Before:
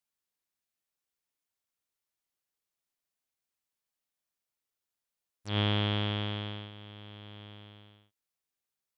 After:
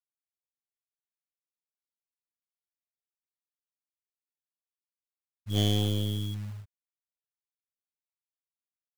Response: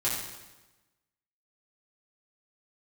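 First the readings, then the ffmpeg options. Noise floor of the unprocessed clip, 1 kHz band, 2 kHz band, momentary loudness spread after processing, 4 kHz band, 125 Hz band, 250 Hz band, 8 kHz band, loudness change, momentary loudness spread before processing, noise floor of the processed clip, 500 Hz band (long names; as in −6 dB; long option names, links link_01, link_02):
below −85 dBFS, −7.0 dB, −11.0 dB, 15 LU, 0.0 dB, +3.5 dB, +2.5 dB, can't be measured, +2.0 dB, 20 LU, below −85 dBFS, +1.0 dB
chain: -filter_complex "[0:a]asplit=2[link_01][link_02];[1:a]atrim=start_sample=2205,atrim=end_sample=3528[link_03];[link_02][link_03]afir=irnorm=-1:irlink=0,volume=-26.5dB[link_04];[link_01][link_04]amix=inputs=2:normalize=0,afftfilt=real='re*gte(hypot(re,im),0.0562)':imag='im*gte(hypot(re,im),0.0562)':win_size=1024:overlap=0.75,aeval=exprs='0.126*(cos(1*acos(clip(val(0)/0.126,-1,1)))-cos(1*PI/2))+0.00126*(cos(4*acos(clip(val(0)/0.126,-1,1)))-cos(4*PI/2))+0.0141*(cos(6*acos(clip(val(0)/0.126,-1,1)))-cos(6*PI/2))+0.00251*(cos(8*acos(clip(val(0)/0.126,-1,1)))-cos(8*PI/2))':channel_layout=same,acrusher=bits=4:mode=log:mix=0:aa=0.000001,volume=3dB"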